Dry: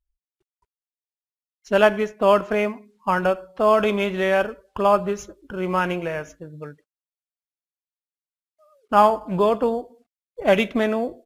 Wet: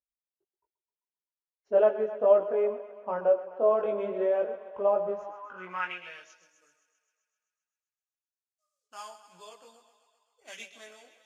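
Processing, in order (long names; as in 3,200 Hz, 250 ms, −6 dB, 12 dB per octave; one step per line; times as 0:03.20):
feedback echo with a high-pass in the loop 130 ms, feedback 70%, high-pass 290 Hz, level −12.5 dB
band-pass filter sweep 530 Hz → 6,800 Hz, 0:05.06–0:06.56
multi-voice chorus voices 4, 0.33 Hz, delay 20 ms, depth 3.4 ms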